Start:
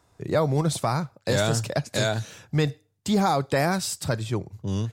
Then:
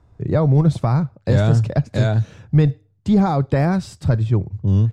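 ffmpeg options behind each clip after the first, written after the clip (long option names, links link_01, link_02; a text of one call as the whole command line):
ffmpeg -i in.wav -af "aemphasis=mode=reproduction:type=riaa" out.wav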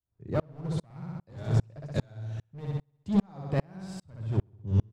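ffmpeg -i in.wav -filter_complex "[0:a]volume=12.5dB,asoftclip=hard,volume=-12.5dB,asplit=2[link_01][link_02];[link_02]aecho=0:1:63|126|189|252|315|378|441:0.708|0.354|0.177|0.0885|0.0442|0.0221|0.0111[link_03];[link_01][link_03]amix=inputs=2:normalize=0,aeval=exprs='val(0)*pow(10,-38*if(lt(mod(-2.5*n/s,1),2*abs(-2.5)/1000),1-mod(-2.5*n/s,1)/(2*abs(-2.5)/1000),(mod(-2.5*n/s,1)-2*abs(-2.5)/1000)/(1-2*abs(-2.5)/1000))/20)':channel_layout=same,volume=-6dB" out.wav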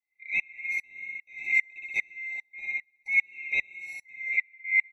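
ffmpeg -i in.wav -af "afftfilt=real='real(if(lt(b,920),b+92*(1-2*mod(floor(b/92),2)),b),0)':imag='imag(if(lt(b,920),b+92*(1-2*mod(floor(b/92),2)),b),0)':win_size=2048:overlap=0.75,equalizer=frequency=830:width=5.5:gain=6.5,afftfilt=real='re*eq(mod(floor(b*sr/1024/910),2),0)':imag='im*eq(mod(floor(b*sr/1024/910),2),0)':win_size=1024:overlap=0.75" out.wav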